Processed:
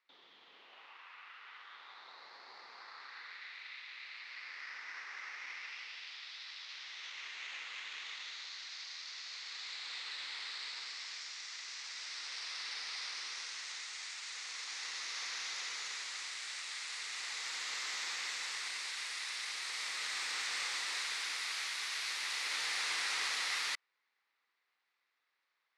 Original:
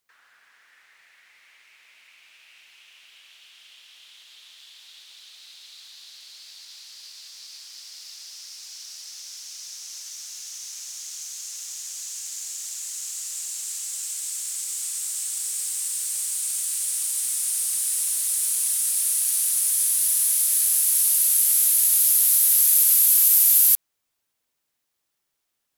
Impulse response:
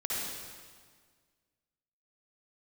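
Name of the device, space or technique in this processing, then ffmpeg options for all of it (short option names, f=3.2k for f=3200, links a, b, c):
voice changer toy: -af "aeval=exprs='val(0)*sin(2*PI*1300*n/s+1300*0.45/0.39*sin(2*PI*0.39*n/s))':c=same,highpass=600,equalizer=f=630:t=q:w=4:g=-8,equalizer=f=1.2k:t=q:w=4:g=3,equalizer=f=2k:t=q:w=4:g=7,equalizer=f=3.1k:t=q:w=4:g=-6,lowpass=f=4k:w=0.5412,lowpass=f=4k:w=1.3066,volume=5dB"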